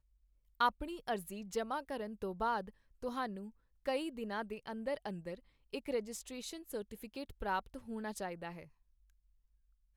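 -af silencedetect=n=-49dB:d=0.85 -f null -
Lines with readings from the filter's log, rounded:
silence_start: 8.64
silence_end: 9.96 | silence_duration: 1.32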